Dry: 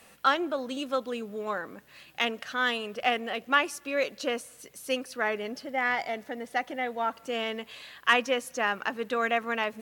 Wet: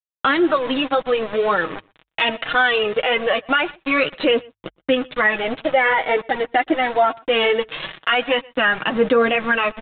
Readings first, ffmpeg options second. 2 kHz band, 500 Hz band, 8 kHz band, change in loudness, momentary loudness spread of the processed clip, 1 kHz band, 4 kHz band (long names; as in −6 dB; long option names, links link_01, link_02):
+10.0 dB, +12.0 dB, below −30 dB, +10.5 dB, 5 LU, +9.0 dB, +10.0 dB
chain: -filter_complex "[0:a]aphaser=in_gain=1:out_gain=1:delay=3.2:decay=0.58:speed=0.22:type=triangular,aresample=11025,aeval=exprs='val(0)*gte(abs(val(0)),0.0106)':channel_layout=same,aresample=44100,bandreject=frequency=50:width_type=h:width=6,bandreject=frequency=100:width_type=h:width=6,agate=range=-10dB:threshold=-48dB:ratio=16:detection=peak,flanger=delay=5.2:depth=2.9:regen=-19:speed=1.9:shape=sinusoidal,aecho=1:1:6.3:0.32,asplit=2[link_01][link_02];[link_02]adelay=122.4,volume=-29dB,highshelf=frequency=4000:gain=-2.76[link_03];[link_01][link_03]amix=inputs=2:normalize=0,aresample=8000,aresample=44100,acompressor=threshold=-46dB:ratio=1.5,alimiter=level_in=28.5dB:limit=-1dB:release=50:level=0:latency=1,adynamicequalizer=threshold=0.0891:dfrequency=2000:dqfactor=0.7:tfrequency=2000:tqfactor=0.7:attack=5:release=100:ratio=0.375:range=2:mode=cutabove:tftype=highshelf,volume=-6dB"